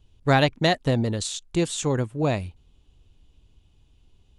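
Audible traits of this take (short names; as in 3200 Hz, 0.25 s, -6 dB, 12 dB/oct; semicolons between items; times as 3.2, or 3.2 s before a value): noise floor -61 dBFS; spectral tilt -5.0 dB/oct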